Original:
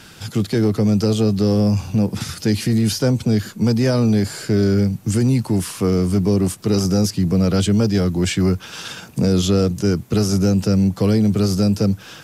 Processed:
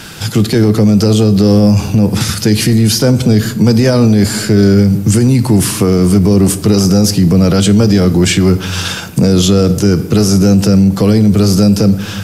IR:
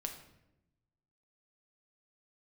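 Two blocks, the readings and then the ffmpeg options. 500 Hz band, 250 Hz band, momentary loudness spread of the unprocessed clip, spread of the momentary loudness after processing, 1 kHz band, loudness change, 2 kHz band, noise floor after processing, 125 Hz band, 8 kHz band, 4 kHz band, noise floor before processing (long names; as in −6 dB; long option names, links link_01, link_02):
+7.5 dB, +8.5 dB, 5 LU, 4 LU, +8.5 dB, +8.0 dB, +9.5 dB, −22 dBFS, +8.0 dB, +11.0 dB, +10.0 dB, −42 dBFS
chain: -filter_complex "[0:a]asplit=2[link_01][link_02];[1:a]atrim=start_sample=2205,highshelf=frequency=8100:gain=7[link_03];[link_02][link_03]afir=irnorm=-1:irlink=0,volume=-3.5dB[link_04];[link_01][link_04]amix=inputs=2:normalize=0,alimiter=level_in=9.5dB:limit=-1dB:release=50:level=0:latency=1,volume=-1dB"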